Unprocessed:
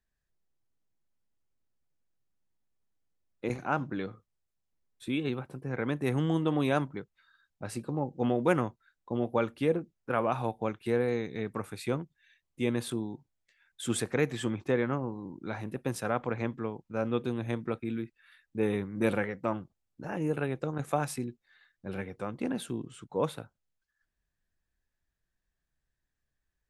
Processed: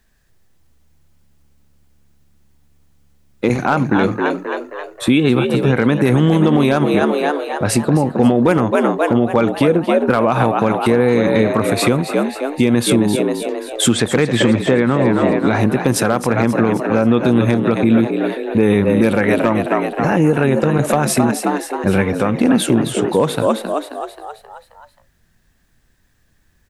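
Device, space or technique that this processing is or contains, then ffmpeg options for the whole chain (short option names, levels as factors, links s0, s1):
mastering chain: -filter_complex "[0:a]asettb=1/sr,asplit=3[s0][s1][s2];[s0]atrim=end=13.924[s3];[s1]atrim=start=13.92:end=14.99,asetpts=PTS-STARTPTS,afade=t=in:d=0.004:c=qsin,afade=t=out:st=1.066:d=0.004:c=qsin,lowpass=5000[s4];[s2]atrim=start=14.986[s5];[s3][s4]acrossfade=d=0.004:c1=hsin:c2=qsin[s6];[s6][s5]acrossfade=d=0.004:c1=qsin:c2=hsin,asplit=7[s7][s8][s9][s10][s11][s12][s13];[s8]adelay=266,afreqshift=71,volume=0.335[s14];[s9]adelay=532,afreqshift=142,volume=0.174[s15];[s10]adelay=798,afreqshift=213,volume=0.0902[s16];[s11]adelay=1064,afreqshift=284,volume=0.0473[s17];[s12]adelay=1330,afreqshift=355,volume=0.0245[s18];[s13]adelay=1596,afreqshift=426,volume=0.0127[s19];[s7][s14][s15][s16][s17][s18][s19]amix=inputs=7:normalize=0,equalizer=f=230:t=o:w=0.29:g=3.5,acompressor=threshold=0.0251:ratio=3,asoftclip=type=hard:threshold=0.0668,alimiter=level_in=21.1:limit=0.891:release=50:level=0:latency=1,volume=0.708"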